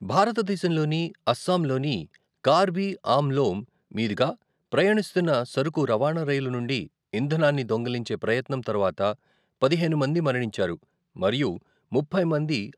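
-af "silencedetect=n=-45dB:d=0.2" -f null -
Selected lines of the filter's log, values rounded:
silence_start: 2.16
silence_end: 2.44 | silence_duration: 0.28
silence_start: 3.64
silence_end: 3.91 | silence_duration: 0.27
silence_start: 4.35
silence_end: 4.72 | silence_duration: 0.37
silence_start: 6.87
silence_end: 7.13 | silence_duration: 0.26
silence_start: 9.15
silence_end: 9.62 | silence_duration: 0.47
silence_start: 10.77
silence_end: 11.16 | silence_duration: 0.38
silence_start: 11.59
silence_end: 11.92 | silence_duration: 0.33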